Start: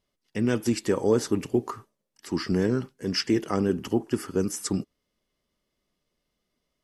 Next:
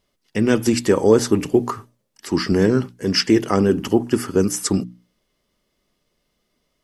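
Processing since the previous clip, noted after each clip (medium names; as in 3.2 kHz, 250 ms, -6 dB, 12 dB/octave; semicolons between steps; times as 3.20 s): hum notches 60/120/180/240/300 Hz; trim +8.5 dB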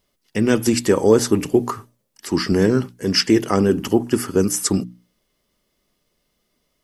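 treble shelf 9.8 kHz +8 dB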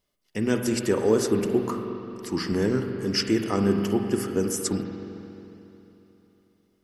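spring tank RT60 3.3 s, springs 40/45 ms, chirp 30 ms, DRR 4.5 dB; trim -8 dB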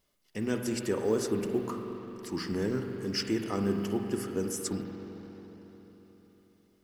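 companding laws mixed up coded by mu; trim -7.5 dB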